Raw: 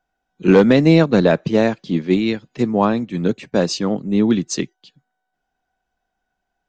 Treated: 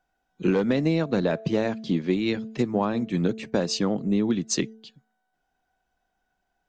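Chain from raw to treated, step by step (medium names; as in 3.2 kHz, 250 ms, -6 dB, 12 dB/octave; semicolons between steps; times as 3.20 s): de-hum 221.1 Hz, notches 3; compression 6:1, threshold -20 dBFS, peak gain reduction 13 dB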